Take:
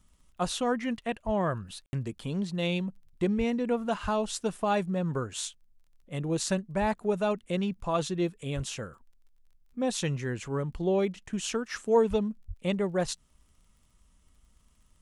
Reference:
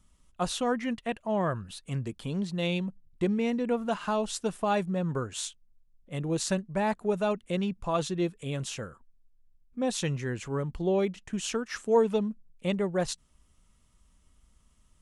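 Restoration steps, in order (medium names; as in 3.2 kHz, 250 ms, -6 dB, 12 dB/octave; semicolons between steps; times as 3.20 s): de-click; de-plosive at 1.25/3.37/4.02/6.80/8.55/12.09/12.47 s; room tone fill 1.86–1.93 s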